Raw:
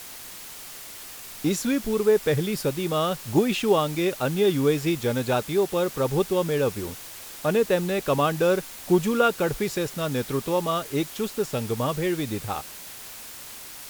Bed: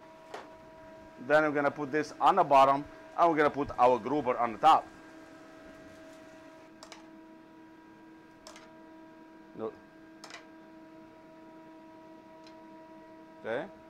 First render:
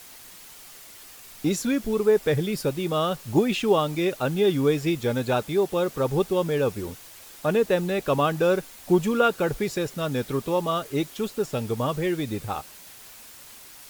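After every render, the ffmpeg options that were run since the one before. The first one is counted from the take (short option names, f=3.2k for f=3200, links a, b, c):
-af "afftdn=nr=6:nf=-41"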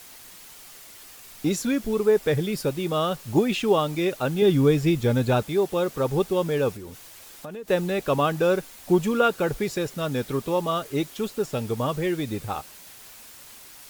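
-filter_complex "[0:a]asettb=1/sr,asplit=3[a][b][c];[a]atrim=end=4.424[d];[b]atrim=start=4.42:end=5.44,asetpts=PTS-STARTPTS,afade=t=in:d=0.004:c=qsin,afade=t=out:st=1.016:d=0.004:c=qsin,lowshelf=f=190:g=10[e];[c]atrim=start=5.436[f];[d][e]acrossfade=d=0.004:c1=hsin:c2=qsin[g];[g][f]acrossfade=d=0.004:c1=qsin:c2=hsin,asettb=1/sr,asplit=3[h][i][j];[h]atrim=end=6.764[k];[i]atrim=start=6.76:end=7.68,asetpts=PTS-STARTPTS,afade=t=in:d=0.004:c=qsin,afade=t=out:st=0.916:d=0.004:c=qsin,acompressor=threshold=-35dB:ratio=5:attack=3.2:release=140:knee=1:detection=peak[l];[j]atrim=start=7.676[m];[k][l]acrossfade=d=0.004:c1=hsin:c2=qsin[n];[n][m]acrossfade=d=0.004:c1=qsin:c2=hsin"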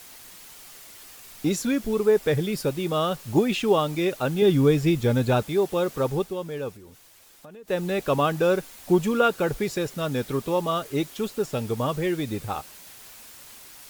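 -filter_complex "[0:a]asplit=3[a][b][c];[a]atrim=end=6.37,asetpts=PTS-STARTPTS,afade=t=out:st=6.04:d=0.33:silence=0.398107[d];[b]atrim=start=6.37:end=7.6,asetpts=PTS-STARTPTS,volume=-8dB[e];[c]atrim=start=7.6,asetpts=PTS-STARTPTS,afade=t=in:d=0.33:silence=0.398107[f];[d][e][f]concat=n=3:v=0:a=1"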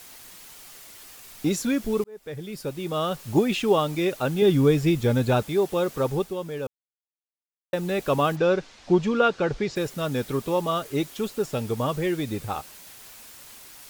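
-filter_complex "[0:a]asplit=3[a][b][c];[a]afade=t=out:st=8.35:d=0.02[d];[b]lowpass=f=5.9k:w=0.5412,lowpass=f=5.9k:w=1.3066,afade=t=in:st=8.35:d=0.02,afade=t=out:st=9.75:d=0.02[e];[c]afade=t=in:st=9.75:d=0.02[f];[d][e][f]amix=inputs=3:normalize=0,asplit=4[g][h][i][j];[g]atrim=end=2.04,asetpts=PTS-STARTPTS,afade=t=out:st=2.036:d=0.004:c=hsin[k];[h]atrim=start=2.04:end=6.67,asetpts=PTS-STARTPTS,afade=t=in:d=1.22,afade=t=out:st=4.626:d=0.004:c=hsin[l];[i]atrim=start=6.67:end=7.73,asetpts=PTS-STARTPTS,volume=0[m];[j]atrim=start=7.73,asetpts=PTS-STARTPTS,afade=t=in:d=0.004:c=hsin[n];[k][l][m][n]concat=n=4:v=0:a=1"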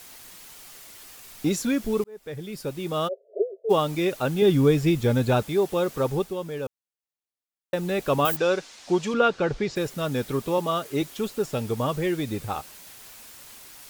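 -filter_complex "[0:a]asplit=3[a][b][c];[a]afade=t=out:st=3.07:d=0.02[d];[b]asuperpass=centerf=510:order=20:qfactor=1.7,afade=t=in:st=3.07:d=0.02,afade=t=out:st=3.69:d=0.02[e];[c]afade=t=in:st=3.69:d=0.02[f];[d][e][f]amix=inputs=3:normalize=0,asettb=1/sr,asplit=3[g][h][i];[g]atrim=end=8.254[j];[h]atrim=start=8.25:end=9.14,asetpts=PTS-STARTPTS,afade=t=in:d=0.004:c=qsin,afade=t=out:st=0.886:d=0.004:c=qsin,aemphasis=mode=production:type=bsi[k];[i]atrim=start=9.136[l];[j][k]acrossfade=d=0.004:c1=hsin:c2=qsin[m];[m][l]acrossfade=d=0.004:c1=qsin:c2=hsin,asettb=1/sr,asplit=3[n][o][p];[n]atrim=end=10.584[q];[o]atrim=start=10.58:end=11.02,asetpts=PTS-STARTPTS,afade=t=in:d=0.004:c=qsin,afade=t=out:st=0.436:d=0.004:c=qsin,highpass=120[r];[p]atrim=start=11.016[s];[q][r]acrossfade=d=0.004:c1=hsin:c2=qsin[t];[t][s]acrossfade=d=0.004:c1=qsin:c2=hsin"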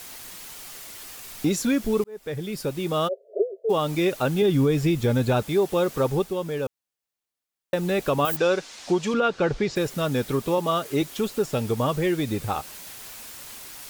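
-filter_complex "[0:a]asplit=2[a][b];[b]acompressor=threshold=-32dB:ratio=6,volume=-2dB[c];[a][c]amix=inputs=2:normalize=0,alimiter=limit=-12.5dB:level=0:latency=1:release=111"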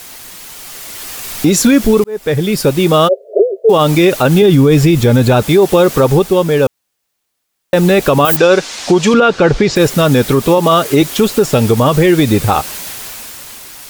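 -af "dynaudnorm=f=160:g=13:m=10dB,alimiter=level_in=8dB:limit=-1dB:release=50:level=0:latency=1"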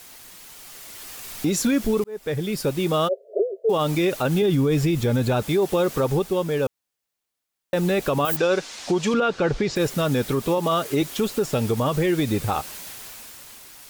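-af "volume=-12dB"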